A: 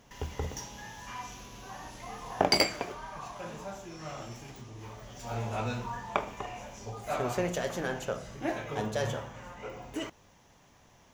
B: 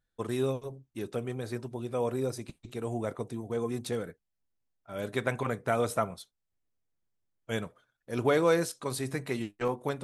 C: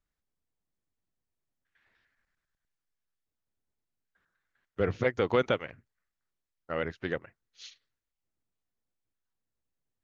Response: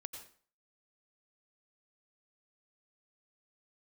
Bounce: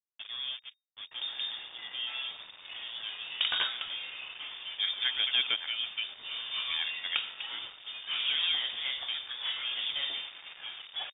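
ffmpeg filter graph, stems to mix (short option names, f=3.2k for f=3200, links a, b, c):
-filter_complex "[0:a]aeval=exprs='clip(val(0),-1,0.0251)':c=same,adelay=1000,volume=-1.5dB,asplit=2[a][b];[b]volume=-15dB[c];[1:a]adynamicequalizer=threshold=0.0112:dfrequency=810:dqfactor=0.97:tfrequency=810:tqfactor=0.97:attack=5:release=100:ratio=0.375:range=2:mode=boostabove:tftype=bell,volume=-9dB[d];[2:a]volume=-3dB[e];[3:a]atrim=start_sample=2205[f];[c][f]afir=irnorm=-1:irlink=0[g];[a][d][e][g]amix=inputs=4:normalize=0,bandreject=f=56.84:t=h:w=4,bandreject=f=113.68:t=h:w=4,bandreject=f=170.52:t=h:w=4,bandreject=f=227.36:t=h:w=4,bandreject=f=284.2:t=h:w=4,bandreject=f=341.04:t=h:w=4,bandreject=f=397.88:t=h:w=4,bandreject=f=454.72:t=h:w=4,bandreject=f=511.56:t=h:w=4,bandreject=f=568.4:t=h:w=4,bandreject=f=625.24:t=h:w=4,bandreject=f=682.08:t=h:w=4,acrusher=bits=6:mix=0:aa=0.5,lowpass=f=3.1k:t=q:w=0.5098,lowpass=f=3.1k:t=q:w=0.6013,lowpass=f=3.1k:t=q:w=0.9,lowpass=f=3.1k:t=q:w=2.563,afreqshift=-3700"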